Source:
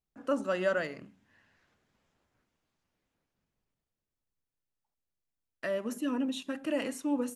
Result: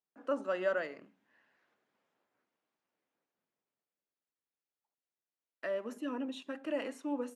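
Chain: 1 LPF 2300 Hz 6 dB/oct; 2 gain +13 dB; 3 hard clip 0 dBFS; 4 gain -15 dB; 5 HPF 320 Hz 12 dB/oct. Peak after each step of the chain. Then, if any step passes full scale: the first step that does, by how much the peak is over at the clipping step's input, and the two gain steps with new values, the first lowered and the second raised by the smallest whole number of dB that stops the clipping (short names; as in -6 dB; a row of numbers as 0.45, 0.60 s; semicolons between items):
-18.5, -5.5, -5.5, -20.5, -20.0 dBFS; no overload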